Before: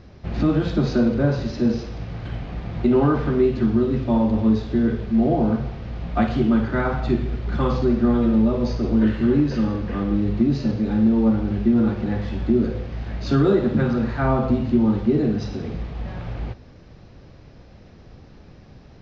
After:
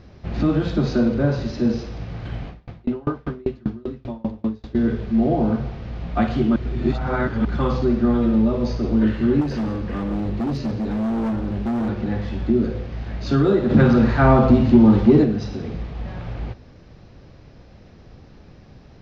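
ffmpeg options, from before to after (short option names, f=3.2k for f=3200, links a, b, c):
-filter_complex "[0:a]asettb=1/sr,asplit=3[a][b][c];[a]atrim=end=2.484[d];[b]atrim=start=2.48:end=4.75,asetpts=PTS-STARTPTS,afade=t=in:d=0.004:c=qsin,afade=t=out:st=2.266:d=0.004:c=qsin,aeval=exprs='val(0)*pow(10,-32*if(lt(mod(5.1*n/s,1),2*abs(5.1)/1000),1-mod(5.1*n/s,1)/(2*abs(5.1)/1000),(mod(5.1*n/s,1)-2*abs(5.1)/1000)/(1-2*abs(5.1)/1000))/20)':c=same[e];[c]atrim=start=4.746[f];[d][e]acrossfade=d=0.004:c1=hsin:c2=qsin[g];[g][f]acrossfade=d=0.004:c1=qsin:c2=hsin,asettb=1/sr,asplit=3[h][i][j];[h]atrim=end=9.414[k];[i]atrim=start=9.41:end=11.89,asetpts=PTS-STARTPTS,afade=t=in:d=0.004:c=qsin,afade=t=out:st=2.476:d=0.004:c=qsin,volume=20.5dB,asoftclip=hard,volume=-20.5dB[l];[j]atrim=start=11.886[m];[k][l]acrossfade=d=0.004:c1=hsin:c2=qsin[n];[n][m]acrossfade=d=0.004:c1=qsin:c2=hsin,asplit=3[o][p][q];[o]afade=t=out:st=13.69:d=0.02[r];[p]acontrast=80,afade=t=in:st=13.69:d=0.02,afade=t=out:st=15.23:d=0.02[s];[q]afade=t=in:st=15.23:d=0.02[t];[r][s][t]amix=inputs=3:normalize=0,asplit=3[u][v][w];[u]atrim=end=6.562[x];[v]atrim=start=6.558:end=7.452,asetpts=PTS-STARTPTS,areverse[y];[w]atrim=start=7.448[z];[x][y]acrossfade=d=0.004:c1=hsin:c2=hsin[aa];[aa][z]acrossfade=d=0.004:c1=hsin:c2=hsin"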